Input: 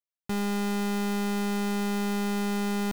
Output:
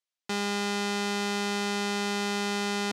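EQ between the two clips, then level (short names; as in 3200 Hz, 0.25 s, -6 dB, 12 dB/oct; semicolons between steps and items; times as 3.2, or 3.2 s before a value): BPF 270–5900 Hz; high shelf 2300 Hz +9.5 dB; +1.0 dB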